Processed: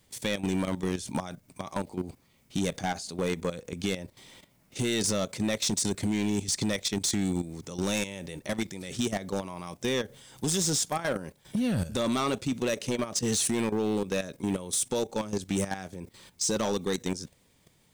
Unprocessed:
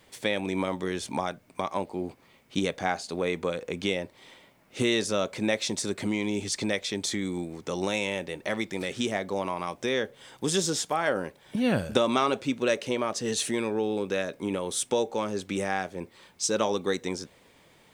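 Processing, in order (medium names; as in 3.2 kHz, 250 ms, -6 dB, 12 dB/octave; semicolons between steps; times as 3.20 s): tone controls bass +11 dB, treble +11 dB; level held to a coarse grid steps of 13 dB; overload inside the chain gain 22 dB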